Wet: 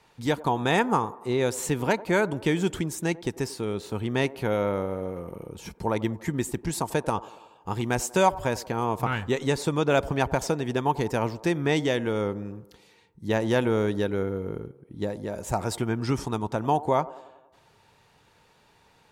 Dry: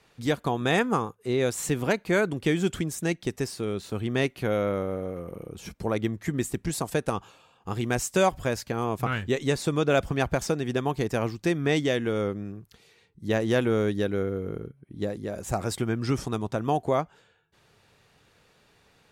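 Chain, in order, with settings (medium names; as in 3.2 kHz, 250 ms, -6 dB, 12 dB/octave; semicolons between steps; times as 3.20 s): peaking EQ 910 Hz +11 dB 0.21 oct; on a send: feedback echo behind a band-pass 94 ms, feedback 57%, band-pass 570 Hz, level -16.5 dB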